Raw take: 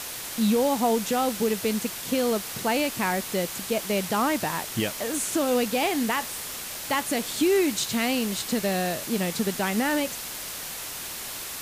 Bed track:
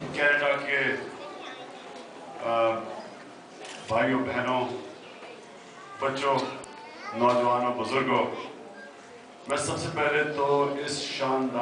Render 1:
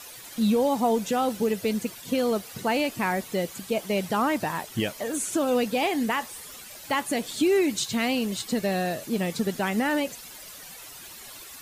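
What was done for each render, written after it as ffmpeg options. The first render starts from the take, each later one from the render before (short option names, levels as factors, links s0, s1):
-af "afftdn=nr=12:nf=-36"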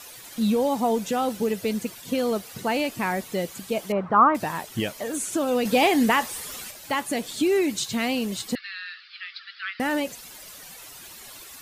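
-filter_complex "[0:a]asettb=1/sr,asplit=3[s0][s1][s2];[s0]atrim=end=3.924[s3];[s1]atrim=start=3.92:end=4.35,asetpts=PTS-STARTPTS,afade=t=in:d=0.004:c=qsin,afade=t=out:st=0.426:d=0.004:c=qsin,lowpass=f=1200:t=q:w=4.7[s4];[s2]atrim=start=4.346[s5];[s3][s4]acrossfade=d=0.004:c1=hsin:c2=qsin[s6];[s6][s5]acrossfade=d=0.004:c1=qsin:c2=hsin,asettb=1/sr,asplit=3[s7][s8][s9];[s7]atrim=end=5.654[s10];[s8]atrim=start=5.65:end=6.71,asetpts=PTS-STARTPTS,afade=t=in:d=0.004:c=qsin,afade=t=out:st=1.056:d=0.004:c=qsin,acontrast=55[s11];[s9]atrim=start=6.706[s12];[s10][s11]acrossfade=d=0.004:c1=hsin:c2=qsin[s13];[s13][s12]acrossfade=d=0.004:c1=qsin:c2=hsin,asettb=1/sr,asplit=3[s14][s15][s16];[s14]atrim=end=8.554[s17];[s15]atrim=start=8.55:end=9.8,asetpts=PTS-STARTPTS,afade=t=in:d=0.004:c=qsin,afade=t=out:st=1.246:d=0.004:c=qsin,asuperpass=centerf=2500:order=20:qfactor=0.68[s18];[s16]atrim=start=9.796[s19];[s17][s18]acrossfade=d=0.004:c1=hsin:c2=qsin[s20];[s20][s19]acrossfade=d=0.004:c1=qsin:c2=hsin"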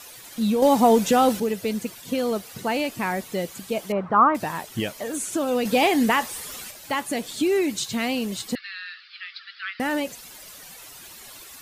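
-filter_complex "[0:a]asettb=1/sr,asplit=3[s0][s1][s2];[s0]atrim=end=0.624[s3];[s1]atrim=start=0.62:end=1.4,asetpts=PTS-STARTPTS,afade=t=in:d=0.004:c=qsin,afade=t=out:st=0.776:d=0.004:c=qsin,acontrast=87[s4];[s2]atrim=start=1.396[s5];[s3][s4]acrossfade=d=0.004:c1=hsin:c2=qsin[s6];[s6][s5]acrossfade=d=0.004:c1=qsin:c2=hsin"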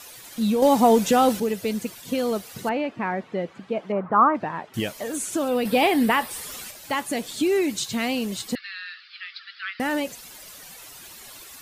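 -filter_complex "[0:a]asettb=1/sr,asplit=3[s0][s1][s2];[s0]atrim=end=2.694[s3];[s1]atrim=start=2.69:end=4.74,asetpts=PTS-STARTPTS,afade=t=in:d=0.004:c=qsin,afade=t=out:st=2.046:d=0.004:c=qsin,highpass=130,lowpass=2000[s4];[s2]atrim=start=4.736[s5];[s3][s4]acrossfade=d=0.004:c1=hsin:c2=qsin[s6];[s6][s5]acrossfade=d=0.004:c1=qsin:c2=hsin,asettb=1/sr,asplit=3[s7][s8][s9];[s7]atrim=end=5.484[s10];[s8]atrim=start=5.48:end=6.31,asetpts=PTS-STARTPTS,afade=t=in:d=0.004:c=qsin,afade=t=out:st=0.826:d=0.004:c=qsin,equalizer=f=6500:t=o:w=0.44:g=-13[s11];[s9]atrim=start=6.306[s12];[s10][s11]acrossfade=d=0.004:c1=hsin:c2=qsin[s13];[s13][s12]acrossfade=d=0.004:c1=qsin:c2=hsin"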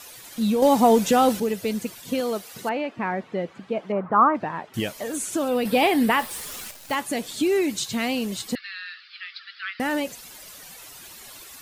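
-filter_complex "[0:a]asettb=1/sr,asplit=3[s0][s1][s2];[s0]atrim=end=2.204[s3];[s1]atrim=start=2.2:end=2.98,asetpts=PTS-STARTPTS,afade=t=in:d=0.004:c=qsin,afade=t=out:st=0.776:d=0.004:c=qsin,lowshelf=f=160:g=-11.5[s4];[s2]atrim=start=2.976[s5];[s3][s4]acrossfade=d=0.004:c1=hsin:c2=qsin[s6];[s6][s5]acrossfade=d=0.004:c1=qsin:c2=hsin,asettb=1/sr,asplit=3[s7][s8][s9];[s7]atrim=end=6.194[s10];[s8]atrim=start=6.19:end=6.95,asetpts=PTS-STARTPTS,afade=t=in:d=0.004:c=qsin,afade=t=out:st=0.756:d=0.004:c=qsin,acrusher=bits=7:dc=4:mix=0:aa=0.000001[s11];[s9]atrim=start=6.946[s12];[s10][s11]acrossfade=d=0.004:c1=hsin:c2=qsin[s13];[s13][s12]acrossfade=d=0.004:c1=qsin:c2=hsin"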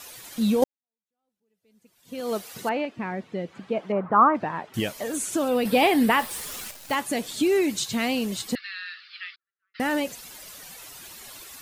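-filter_complex "[0:a]asettb=1/sr,asplit=3[s0][s1][s2];[s0]atrim=end=2.854[s3];[s1]atrim=start=2.85:end=3.53,asetpts=PTS-STARTPTS,afade=t=in:d=0.004:c=qsin,afade=t=out:st=0.676:d=0.004:c=qsin,equalizer=f=1000:w=0.49:g=-7[s4];[s2]atrim=start=3.526[s5];[s3][s4]acrossfade=d=0.004:c1=hsin:c2=qsin[s6];[s6][s5]acrossfade=d=0.004:c1=qsin:c2=hsin,asplit=3[s7][s8][s9];[s7]afade=t=out:st=9.34:d=0.02[s10];[s8]asuperpass=centerf=390:order=4:qfactor=3.8,afade=t=in:st=9.34:d=0.02,afade=t=out:st=9.74:d=0.02[s11];[s9]afade=t=in:st=9.74:d=0.02[s12];[s10][s11][s12]amix=inputs=3:normalize=0,asplit=2[s13][s14];[s13]atrim=end=0.64,asetpts=PTS-STARTPTS,afade=t=out:st=0.636:d=0.004:c=hsin[s15];[s14]atrim=start=0.64,asetpts=PTS-STARTPTS,afade=t=in:d=1.69:c=exp[s16];[s15][s16]concat=n=2:v=0:a=1"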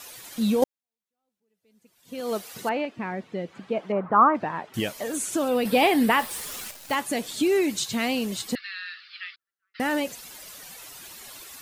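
-af "lowshelf=f=150:g=-3"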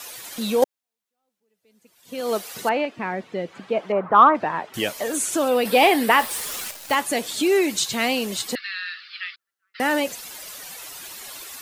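-filter_complex "[0:a]acrossover=split=330[s0][s1];[s0]alimiter=level_in=1.88:limit=0.0631:level=0:latency=1,volume=0.531[s2];[s1]acontrast=36[s3];[s2][s3]amix=inputs=2:normalize=0"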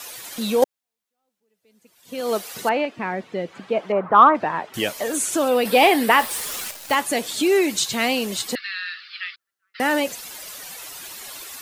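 -af "volume=1.12"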